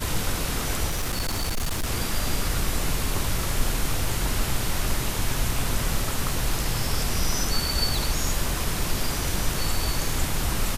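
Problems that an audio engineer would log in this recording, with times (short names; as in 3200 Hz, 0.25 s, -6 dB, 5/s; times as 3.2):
0.89–1.89 clipped -22 dBFS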